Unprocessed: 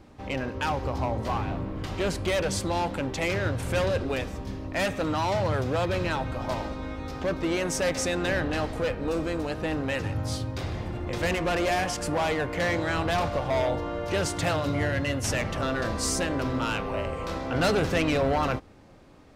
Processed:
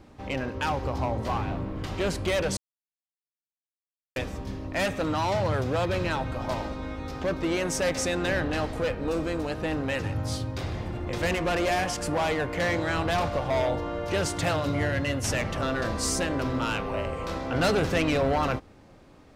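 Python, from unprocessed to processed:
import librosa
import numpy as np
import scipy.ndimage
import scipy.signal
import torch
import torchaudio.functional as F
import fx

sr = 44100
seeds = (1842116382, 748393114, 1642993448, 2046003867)

y = fx.edit(x, sr, fx.silence(start_s=2.57, length_s=1.59), tone=tone)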